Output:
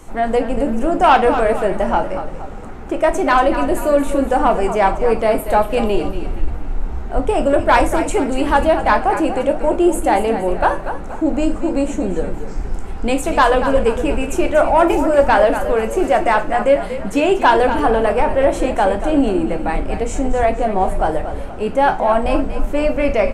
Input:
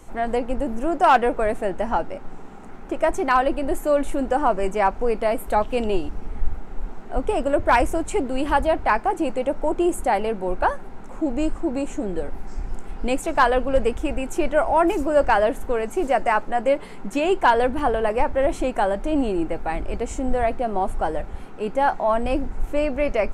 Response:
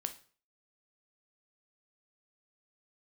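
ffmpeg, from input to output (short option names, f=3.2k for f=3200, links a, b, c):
-filter_complex "[0:a]asplit=6[a][b][c][d][e][f];[b]adelay=236,afreqshift=-36,volume=-11dB[g];[c]adelay=472,afreqshift=-72,volume=-18.1dB[h];[d]adelay=708,afreqshift=-108,volume=-25.3dB[i];[e]adelay=944,afreqshift=-144,volume=-32.4dB[j];[f]adelay=1180,afreqshift=-180,volume=-39.5dB[k];[a][g][h][i][j][k]amix=inputs=6:normalize=0,acontrast=79[l];[1:a]atrim=start_sample=2205,asetrate=52920,aresample=44100[m];[l][m]afir=irnorm=-1:irlink=0,volume=1.5dB"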